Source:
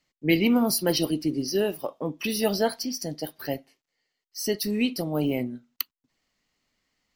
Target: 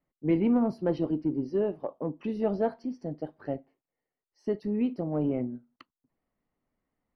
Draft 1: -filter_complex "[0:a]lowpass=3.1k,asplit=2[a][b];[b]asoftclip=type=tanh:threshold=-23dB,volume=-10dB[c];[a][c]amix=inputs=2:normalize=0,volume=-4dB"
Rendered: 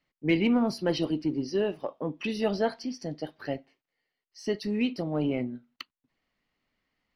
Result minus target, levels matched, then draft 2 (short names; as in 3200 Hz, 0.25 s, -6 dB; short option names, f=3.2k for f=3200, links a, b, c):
4000 Hz band +17.0 dB
-filter_complex "[0:a]lowpass=980,asplit=2[a][b];[b]asoftclip=type=tanh:threshold=-23dB,volume=-10dB[c];[a][c]amix=inputs=2:normalize=0,volume=-4dB"